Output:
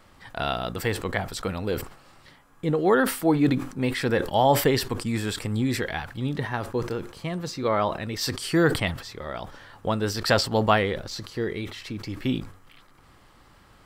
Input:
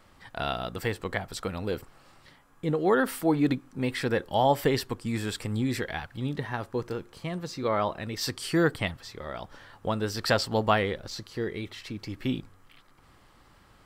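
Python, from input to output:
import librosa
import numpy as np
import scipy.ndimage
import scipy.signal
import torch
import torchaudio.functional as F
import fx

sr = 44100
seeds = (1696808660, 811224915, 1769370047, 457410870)

y = fx.sustainer(x, sr, db_per_s=110.0)
y = F.gain(torch.from_numpy(y), 3.0).numpy()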